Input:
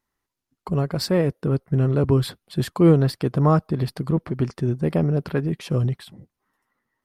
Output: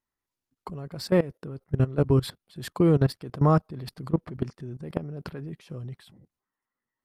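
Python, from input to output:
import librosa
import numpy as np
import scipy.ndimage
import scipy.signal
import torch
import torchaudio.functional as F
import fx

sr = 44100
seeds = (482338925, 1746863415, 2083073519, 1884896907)

y = fx.level_steps(x, sr, step_db=18)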